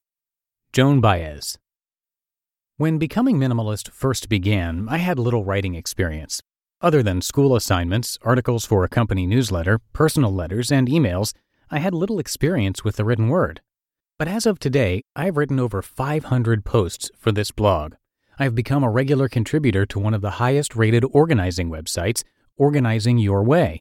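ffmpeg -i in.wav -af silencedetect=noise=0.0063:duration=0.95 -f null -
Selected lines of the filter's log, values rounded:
silence_start: 1.56
silence_end: 2.79 | silence_duration: 1.23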